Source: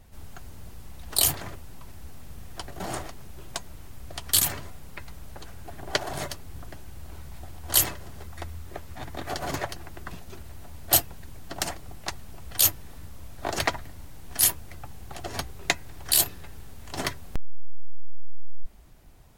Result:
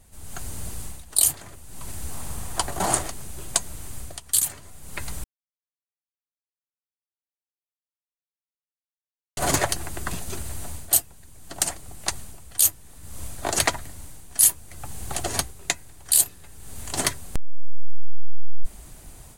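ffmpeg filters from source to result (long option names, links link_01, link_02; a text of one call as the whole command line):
ffmpeg -i in.wav -filter_complex "[0:a]asettb=1/sr,asplit=3[link_01][link_02][link_03];[link_01]atrim=end=2.114[link_04];[link_02]atrim=start=2.11:end=2.94,asetpts=PTS-STARTPTS,afade=type=in:duration=0.004:curve=qsin,afade=type=out:start_time=0.826:duration=0.004:curve=qsin,equalizer=frequency=960:width_type=o:width=0.98:gain=7.5[link_05];[link_03]atrim=start=2.936[link_06];[link_04][link_05]acrossfade=duration=0.004:curve1=hsin:curve2=qsin[link_07];[link_07][link_06]acrossfade=duration=0.004:curve1=qsin:curve2=hsin,asplit=3[link_08][link_09][link_10];[link_08]atrim=end=5.24,asetpts=PTS-STARTPTS,afade=type=out:start_time=5.236:duration=0.004:curve=hsin[link_11];[link_09]atrim=start=5.24:end=9.37,asetpts=PTS-STARTPTS,volume=0[link_12];[link_10]atrim=start=9.37,asetpts=PTS-STARTPTS,afade=type=in:duration=0.004:curve=hsin[link_13];[link_11][link_12][link_13]concat=n=3:v=0:a=1,equalizer=frequency=8900:width_type=o:width=1.1:gain=13.5,bandreject=frequency=5400:width=19,dynaudnorm=framelen=210:gausssize=3:maxgain=11dB,volume=-2.5dB" out.wav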